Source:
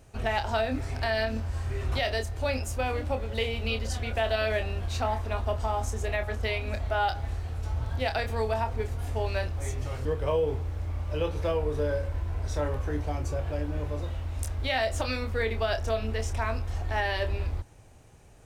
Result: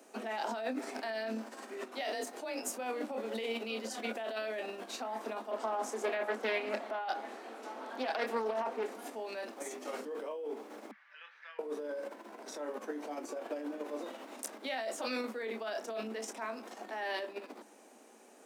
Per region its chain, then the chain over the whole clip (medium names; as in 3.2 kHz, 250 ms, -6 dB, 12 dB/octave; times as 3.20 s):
2.00–2.68 s: frequency shift +30 Hz + doubling 16 ms -11.5 dB
5.51–8.95 s: high-pass 180 Hz 24 dB/octave + tone controls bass -6 dB, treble -6 dB + loudspeaker Doppler distortion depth 0.35 ms
10.91–11.59 s: ladder high-pass 1.6 kHz, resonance 70% + distance through air 230 m
whole clip: peaking EQ 3 kHz -3.5 dB 1.8 oct; compressor with a negative ratio -33 dBFS, ratio -1; steep high-pass 210 Hz 96 dB/octave; trim -1 dB